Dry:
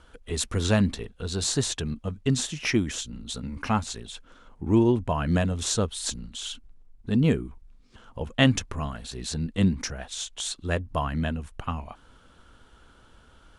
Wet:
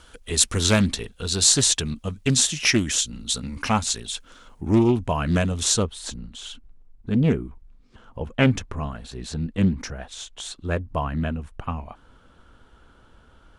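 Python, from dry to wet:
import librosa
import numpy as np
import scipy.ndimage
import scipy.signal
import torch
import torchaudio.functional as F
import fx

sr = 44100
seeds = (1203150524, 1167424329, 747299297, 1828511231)

y = fx.high_shelf(x, sr, hz=2700.0, db=fx.steps((0.0, 11.5), (4.69, 6.0), (5.82, -7.0)))
y = fx.doppler_dist(y, sr, depth_ms=0.27)
y = F.gain(torch.from_numpy(y), 2.0).numpy()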